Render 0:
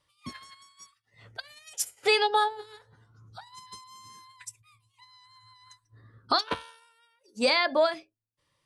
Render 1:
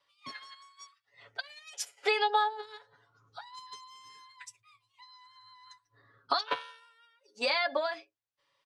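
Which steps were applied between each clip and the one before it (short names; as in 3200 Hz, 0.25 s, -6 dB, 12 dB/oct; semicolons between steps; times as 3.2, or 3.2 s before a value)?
three-band isolator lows -18 dB, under 420 Hz, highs -17 dB, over 5800 Hz; compressor, threshold -26 dBFS, peak gain reduction 7 dB; comb 7.1 ms, depth 60%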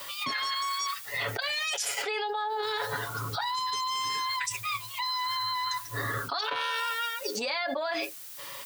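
added noise blue -76 dBFS; fast leveller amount 100%; gain -8 dB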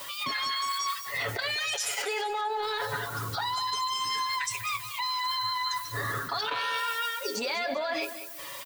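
bin magnitudes rounded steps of 15 dB; in parallel at -5.5 dB: soft clip -27 dBFS, distortion -17 dB; on the sum: feedback echo 0.195 s, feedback 35%, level -12 dB; gain -2.5 dB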